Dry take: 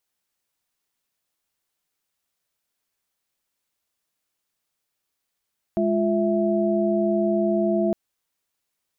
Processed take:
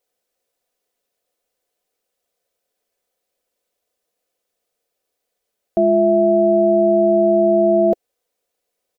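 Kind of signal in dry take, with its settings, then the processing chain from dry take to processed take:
chord G#3/F4/E5 sine, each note -23 dBFS 2.16 s
band shelf 500 Hz +13 dB 1.2 oct; comb 4 ms, depth 45%

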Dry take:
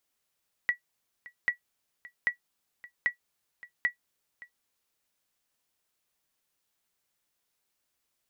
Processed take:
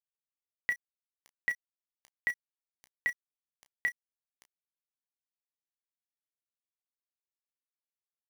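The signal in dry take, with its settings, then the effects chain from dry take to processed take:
sonar ping 1940 Hz, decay 0.11 s, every 0.79 s, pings 5, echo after 0.57 s, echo -20.5 dB -16.5 dBFS
bell 1300 Hz -7.5 dB 0.77 oct; sample gate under -40 dBFS; early reflections 17 ms -14 dB, 31 ms -10.5 dB

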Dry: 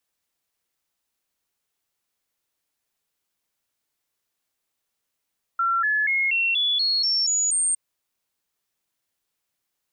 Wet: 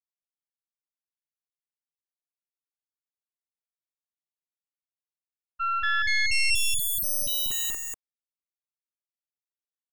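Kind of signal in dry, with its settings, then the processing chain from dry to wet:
stepped sine 1360 Hz up, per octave 3, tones 9, 0.24 s, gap 0.00 s -19 dBFS
tracing distortion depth 0.23 ms; expander -18 dBFS; on a send: echo 0.193 s -4 dB

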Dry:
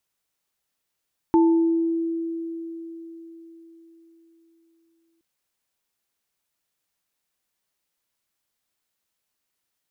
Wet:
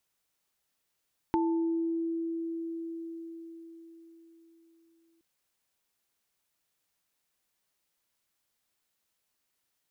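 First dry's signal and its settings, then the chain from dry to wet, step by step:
sine partials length 3.87 s, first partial 331 Hz, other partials 883 Hz, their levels -7 dB, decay 4.34 s, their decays 0.74 s, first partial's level -13 dB
dynamic EQ 1100 Hz, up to +6 dB, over -41 dBFS, Q 0.93; compressor 2:1, threshold -36 dBFS

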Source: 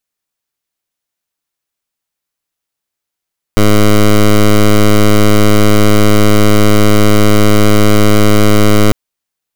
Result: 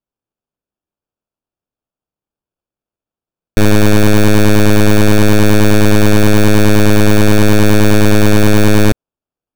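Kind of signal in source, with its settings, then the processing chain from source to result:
pulse 105 Hz, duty 12% -5.5 dBFS 5.35 s
median filter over 15 samples; bell 1200 Hz -11.5 dB 0.81 oct; sample-and-hold 22×

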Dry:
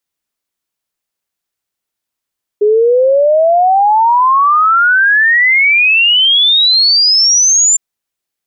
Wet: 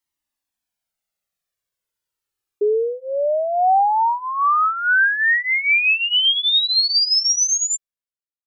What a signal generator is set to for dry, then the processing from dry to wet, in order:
log sweep 410 Hz -> 7300 Hz 5.16 s -6 dBFS
ending faded out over 1.92 s; limiter -10.5 dBFS; cascading flanger falling 0.32 Hz

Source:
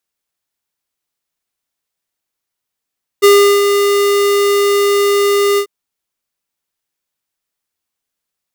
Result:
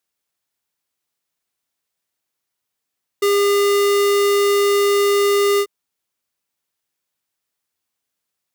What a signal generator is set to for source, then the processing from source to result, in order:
ADSR square 404 Hz, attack 22 ms, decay 0.366 s, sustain -6.5 dB, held 2.36 s, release 81 ms -5.5 dBFS
HPF 57 Hz; limiter -13 dBFS

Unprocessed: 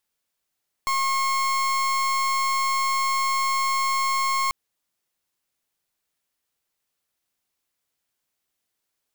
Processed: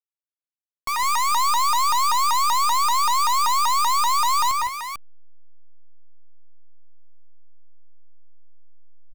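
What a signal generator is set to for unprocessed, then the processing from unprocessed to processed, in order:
pulse 1080 Hz, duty 36% -23 dBFS 3.64 s
backlash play -39.5 dBFS; on a send: tapped delay 0.125/0.127/0.157/0.159/0.173/0.447 s -9/-17/-12.5/-5.5/-10/-6.5 dB; on the sum: shaped vibrato saw up 5.2 Hz, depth 250 cents

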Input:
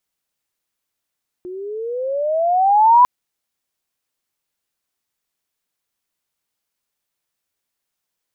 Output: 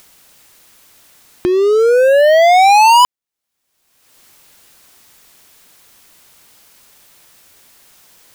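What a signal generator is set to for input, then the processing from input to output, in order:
gliding synth tone sine, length 1.60 s, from 355 Hz, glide +18 st, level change +22 dB, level -6 dB
sample leveller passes 5; upward compressor, threshold -16 dBFS

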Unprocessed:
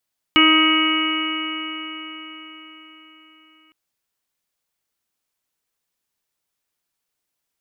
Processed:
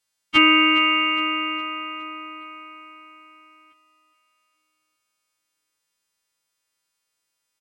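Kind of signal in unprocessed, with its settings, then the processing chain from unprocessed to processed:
stretched partials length 3.36 s, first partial 313 Hz, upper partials -19/-15.5/-2/-14/-12.5/-1/-12/1 dB, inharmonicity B 0.00087, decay 4.61 s, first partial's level -15 dB
frequency quantiser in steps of 2 st; air absorption 52 m; feedback echo 0.413 s, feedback 49%, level -15 dB

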